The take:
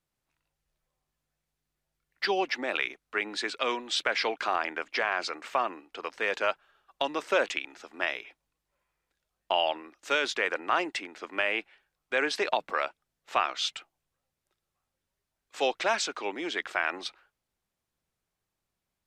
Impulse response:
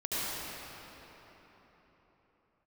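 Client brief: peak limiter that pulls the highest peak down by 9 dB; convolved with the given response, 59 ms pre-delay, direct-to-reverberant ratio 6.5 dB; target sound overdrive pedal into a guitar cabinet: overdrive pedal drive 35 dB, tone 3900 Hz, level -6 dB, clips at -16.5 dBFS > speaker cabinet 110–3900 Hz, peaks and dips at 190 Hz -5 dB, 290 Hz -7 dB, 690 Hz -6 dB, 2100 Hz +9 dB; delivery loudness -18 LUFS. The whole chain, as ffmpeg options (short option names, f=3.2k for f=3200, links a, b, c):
-filter_complex "[0:a]alimiter=limit=-19dB:level=0:latency=1,asplit=2[a][b];[1:a]atrim=start_sample=2205,adelay=59[c];[b][c]afir=irnorm=-1:irlink=0,volume=-15dB[d];[a][d]amix=inputs=2:normalize=0,asplit=2[e][f];[f]highpass=f=720:p=1,volume=35dB,asoftclip=type=tanh:threshold=-16.5dB[g];[e][g]amix=inputs=2:normalize=0,lowpass=f=3.9k:p=1,volume=-6dB,highpass=110,equalizer=f=190:t=q:w=4:g=-5,equalizer=f=290:t=q:w=4:g=-7,equalizer=f=690:t=q:w=4:g=-6,equalizer=f=2.1k:t=q:w=4:g=9,lowpass=f=3.9k:w=0.5412,lowpass=f=3.9k:w=1.3066,volume=3dB"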